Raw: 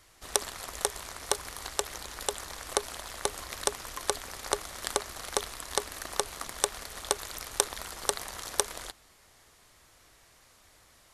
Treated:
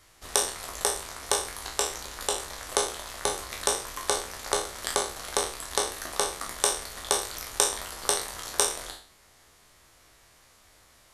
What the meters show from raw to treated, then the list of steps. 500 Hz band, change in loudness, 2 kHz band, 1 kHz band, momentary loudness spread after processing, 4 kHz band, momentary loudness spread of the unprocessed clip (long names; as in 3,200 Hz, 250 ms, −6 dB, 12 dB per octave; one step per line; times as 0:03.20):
+4.0 dB, +4.5 dB, +3.5 dB, +4.0 dB, 6 LU, +4.5 dB, 8 LU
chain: peak hold with a decay on every bin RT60 0.47 s